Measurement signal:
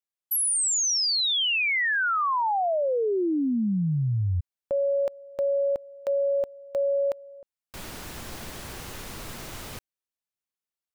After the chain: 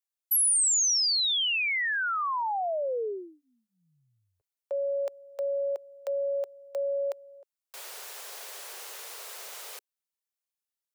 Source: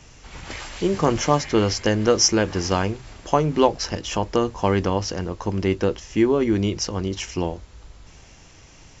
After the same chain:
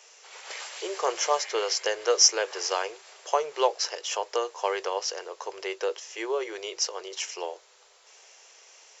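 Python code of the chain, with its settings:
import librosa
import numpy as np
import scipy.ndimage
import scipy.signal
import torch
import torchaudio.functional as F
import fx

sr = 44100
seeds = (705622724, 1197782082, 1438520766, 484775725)

y = scipy.signal.sosfilt(scipy.signal.cheby2(6, 40, 290.0, 'highpass', fs=sr, output='sos'), x)
y = fx.high_shelf(y, sr, hz=4000.0, db=7.0)
y = y * 10.0 ** (-5.0 / 20.0)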